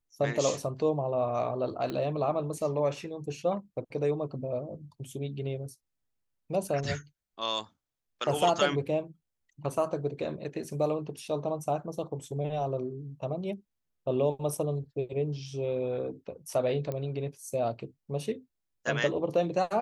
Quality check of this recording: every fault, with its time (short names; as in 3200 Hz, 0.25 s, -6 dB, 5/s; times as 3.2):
1.9 pop -21 dBFS
16.92 pop -22 dBFS